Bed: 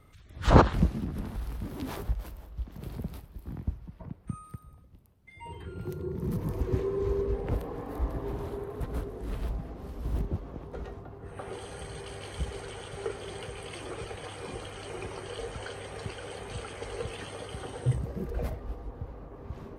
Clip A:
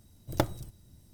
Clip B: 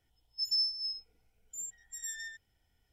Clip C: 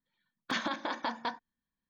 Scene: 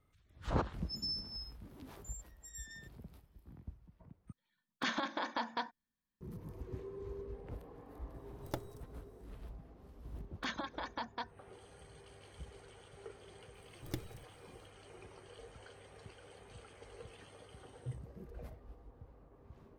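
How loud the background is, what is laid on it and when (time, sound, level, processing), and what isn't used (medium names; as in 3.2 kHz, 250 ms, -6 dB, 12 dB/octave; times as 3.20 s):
bed -16 dB
0.51 s: add B -9.5 dB
4.32 s: replace with C -3 dB
8.14 s: add A -13.5 dB
9.93 s: add C -6.5 dB + reverb removal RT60 0.71 s
13.54 s: add A -11.5 dB + high-order bell 870 Hz -15 dB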